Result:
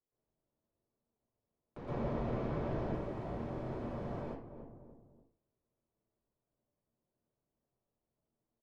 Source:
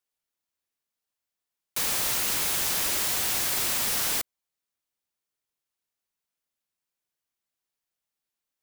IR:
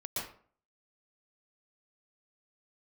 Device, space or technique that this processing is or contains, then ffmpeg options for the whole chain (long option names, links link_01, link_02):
television next door: -filter_complex "[0:a]asettb=1/sr,asplit=3[link_01][link_02][link_03];[link_01]atrim=end=1.774[link_04];[link_02]atrim=start=1.77:end=2.82,asetpts=PTS-STARTPTS,afade=type=in:duration=0.004:curve=qsin,afade=type=out:start_time=1.046:duration=0.004:curve=qsin,lowpass=6200[link_05];[link_03]atrim=start=2.816[link_06];[link_04][link_05]acrossfade=duration=0.004:curve1=hsin:curve2=qsin[link_07];[link_07][link_06]acrossfade=duration=0.004:curve1=qsin:curve2=hsin,asplit=2[link_08][link_09];[link_09]adelay=293,lowpass=frequency=860:poles=1,volume=-19dB,asplit=2[link_10][link_11];[link_11]adelay=293,lowpass=frequency=860:poles=1,volume=0.44,asplit=2[link_12][link_13];[link_13]adelay=293,lowpass=frequency=860:poles=1,volume=0.44[link_14];[link_08][link_10][link_12][link_14]amix=inputs=4:normalize=0,acompressor=threshold=-37dB:ratio=6,lowpass=480[link_15];[1:a]atrim=start_sample=2205[link_16];[link_15][link_16]afir=irnorm=-1:irlink=0,volume=11dB"